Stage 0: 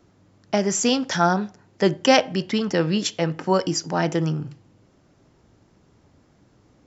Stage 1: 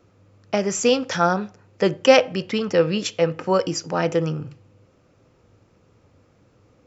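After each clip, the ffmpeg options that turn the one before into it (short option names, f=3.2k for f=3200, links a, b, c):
-af "equalizer=f=100:t=o:w=0.33:g=8,equalizer=f=500:t=o:w=0.33:g=10,equalizer=f=1.25k:t=o:w=0.33:g=6,equalizer=f=2.5k:t=o:w=0.33:g=7,volume=-2.5dB"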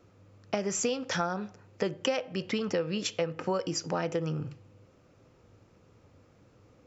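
-af "acompressor=threshold=-24dB:ratio=8,volume=-2.5dB"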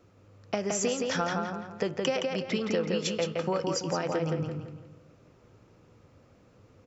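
-filter_complex "[0:a]asplit=2[a][b];[b]adelay=168,lowpass=f=4.2k:p=1,volume=-3dB,asplit=2[c][d];[d]adelay=168,lowpass=f=4.2k:p=1,volume=0.41,asplit=2[e][f];[f]adelay=168,lowpass=f=4.2k:p=1,volume=0.41,asplit=2[g][h];[h]adelay=168,lowpass=f=4.2k:p=1,volume=0.41,asplit=2[i][j];[j]adelay=168,lowpass=f=4.2k:p=1,volume=0.41[k];[a][c][e][g][i][k]amix=inputs=6:normalize=0"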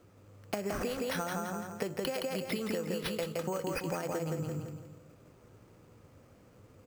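-af "acompressor=threshold=-31dB:ratio=6,acrusher=samples=6:mix=1:aa=0.000001"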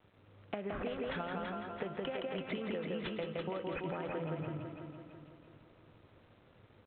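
-af "aresample=8000,aeval=exprs='val(0)*gte(abs(val(0)),0.00133)':c=same,aresample=44100,aecho=1:1:333|666|999|1332|1665|1998:0.501|0.231|0.106|0.0488|0.0224|0.0103,volume=-4.5dB"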